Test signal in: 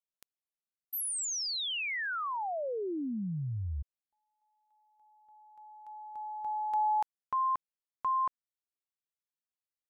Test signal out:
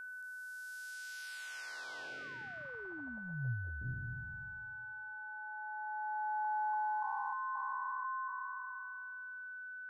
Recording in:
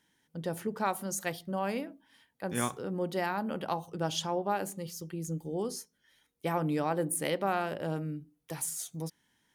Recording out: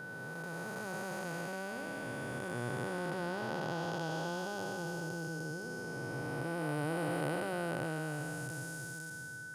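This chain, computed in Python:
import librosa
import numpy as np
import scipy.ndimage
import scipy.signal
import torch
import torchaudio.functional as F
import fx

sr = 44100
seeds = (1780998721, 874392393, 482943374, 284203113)

y = fx.spec_blur(x, sr, span_ms=1150.0)
y = fx.graphic_eq_31(y, sr, hz=(125, 200, 5000, 16000), db=(8, -6, 5, -9))
y = y + 10.0 ** (-45.0 / 20.0) * np.sin(2.0 * np.pi * 1500.0 * np.arange(len(y)) / sr)
y = y * 10.0 ** (1.0 / 20.0)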